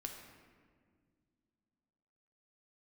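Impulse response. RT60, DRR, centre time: 1.9 s, 2.0 dB, 46 ms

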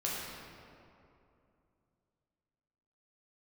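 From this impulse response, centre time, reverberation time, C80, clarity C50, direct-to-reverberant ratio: 134 ms, 2.7 s, 0.0 dB, -1.5 dB, -6.0 dB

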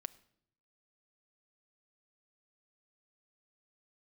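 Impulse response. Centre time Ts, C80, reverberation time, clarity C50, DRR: 2 ms, 22.0 dB, 0.70 s, 19.5 dB, 11.5 dB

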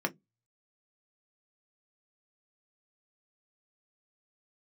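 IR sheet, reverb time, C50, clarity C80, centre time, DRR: 0.15 s, 26.0 dB, 37.5 dB, 8 ms, 3.5 dB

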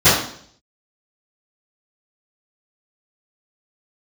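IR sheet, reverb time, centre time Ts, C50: 0.60 s, 51 ms, 2.0 dB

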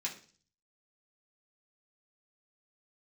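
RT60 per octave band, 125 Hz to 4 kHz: 0.75 s, 0.55 s, 0.45 s, 0.40 s, 0.40 s, 0.55 s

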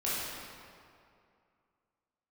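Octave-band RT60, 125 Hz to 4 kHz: 2.4 s, 2.4 s, 2.4 s, 2.4 s, 2.0 s, 1.5 s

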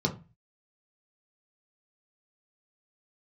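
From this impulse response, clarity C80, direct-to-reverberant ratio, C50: 20.0 dB, 0.0 dB, 14.0 dB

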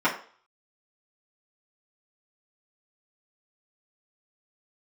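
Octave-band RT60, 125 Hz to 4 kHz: 0.25 s, 0.35 s, 0.45 s, 0.45 s, 0.40 s, 0.45 s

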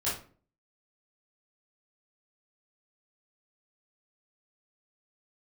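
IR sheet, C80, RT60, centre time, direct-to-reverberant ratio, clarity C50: 11.5 dB, 0.45 s, 38 ms, -10.5 dB, 4.5 dB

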